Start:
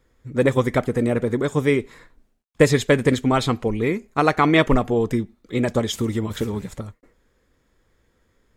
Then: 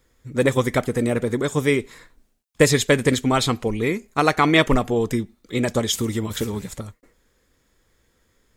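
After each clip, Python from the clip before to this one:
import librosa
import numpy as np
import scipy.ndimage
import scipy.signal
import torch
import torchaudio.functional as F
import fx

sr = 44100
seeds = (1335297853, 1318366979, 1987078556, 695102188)

y = fx.high_shelf(x, sr, hz=3200.0, db=9.5)
y = F.gain(torch.from_numpy(y), -1.0).numpy()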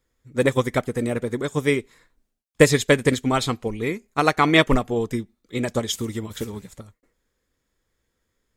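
y = fx.upward_expand(x, sr, threshold_db=-35.0, expansion=1.5)
y = F.gain(torch.from_numpy(y), 2.0).numpy()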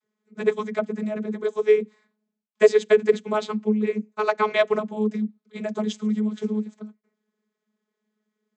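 y = fx.vocoder(x, sr, bands=32, carrier='saw', carrier_hz=213.0)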